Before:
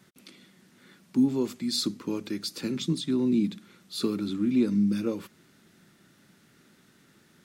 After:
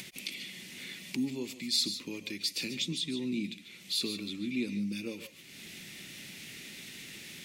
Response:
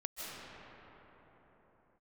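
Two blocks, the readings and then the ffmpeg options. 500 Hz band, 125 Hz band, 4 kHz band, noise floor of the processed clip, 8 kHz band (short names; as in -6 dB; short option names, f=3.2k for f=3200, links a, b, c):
-10.0 dB, -9.5 dB, +3.0 dB, -52 dBFS, +1.5 dB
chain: -filter_complex "[0:a]acompressor=mode=upward:threshold=-27dB:ratio=2.5,highshelf=f=1.8k:t=q:w=3:g=9[a];[1:a]atrim=start_sample=2205,afade=t=out:st=0.2:d=0.01,atrim=end_sample=9261[b];[a][b]afir=irnorm=-1:irlink=0,volume=-5.5dB"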